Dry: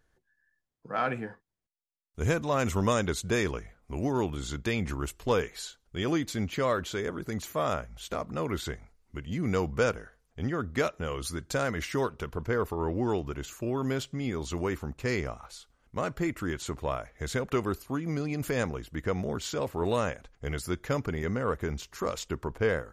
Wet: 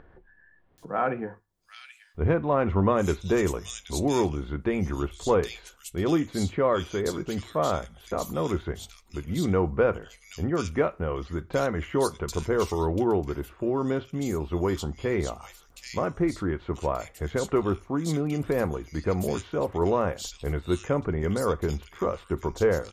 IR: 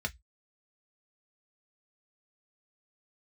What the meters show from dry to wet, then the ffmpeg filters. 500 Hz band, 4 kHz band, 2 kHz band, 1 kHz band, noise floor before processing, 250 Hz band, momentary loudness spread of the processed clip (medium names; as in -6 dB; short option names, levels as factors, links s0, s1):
+5.0 dB, -0.5 dB, -1.5 dB, +3.5 dB, -75 dBFS, +4.5 dB, 9 LU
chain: -filter_complex "[0:a]acrossover=split=2600[s0][s1];[s1]adelay=780[s2];[s0][s2]amix=inputs=2:normalize=0,acompressor=mode=upward:threshold=0.00708:ratio=2.5,asplit=2[s3][s4];[1:a]atrim=start_sample=2205,asetrate=24255,aresample=44100[s5];[s4][s5]afir=irnorm=-1:irlink=0,volume=0.178[s6];[s3][s6]amix=inputs=2:normalize=0,volume=1.33"